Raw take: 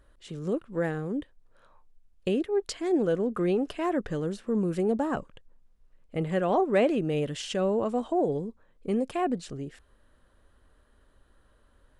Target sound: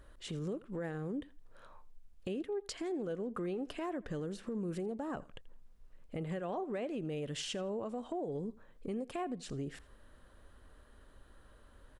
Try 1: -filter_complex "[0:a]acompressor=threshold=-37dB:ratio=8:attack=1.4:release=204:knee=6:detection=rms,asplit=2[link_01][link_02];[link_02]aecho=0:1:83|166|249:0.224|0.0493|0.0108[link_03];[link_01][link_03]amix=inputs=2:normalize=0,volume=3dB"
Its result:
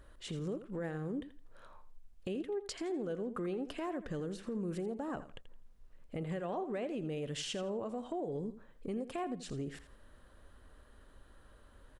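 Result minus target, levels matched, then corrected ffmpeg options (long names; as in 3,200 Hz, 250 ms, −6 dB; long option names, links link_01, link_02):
echo-to-direct +8 dB
-filter_complex "[0:a]acompressor=threshold=-37dB:ratio=8:attack=1.4:release=204:knee=6:detection=rms,asplit=2[link_01][link_02];[link_02]aecho=0:1:83|166:0.0891|0.0196[link_03];[link_01][link_03]amix=inputs=2:normalize=0,volume=3dB"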